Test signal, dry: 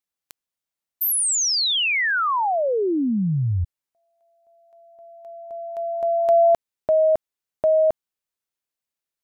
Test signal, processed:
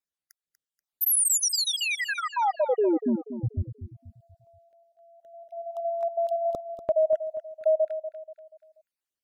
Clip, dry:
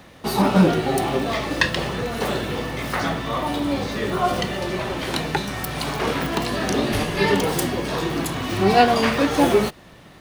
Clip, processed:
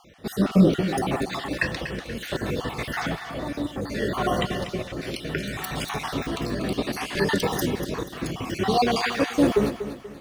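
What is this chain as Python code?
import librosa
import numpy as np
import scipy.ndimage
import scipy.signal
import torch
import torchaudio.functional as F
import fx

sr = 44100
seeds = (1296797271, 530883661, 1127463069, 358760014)

y = fx.spec_dropout(x, sr, seeds[0], share_pct=44)
y = fx.rotary(y, sr, hz=0.65)
y = fx.echo_feedback(y, sr, ms=241, feedback_pct=39, wet_db=-11)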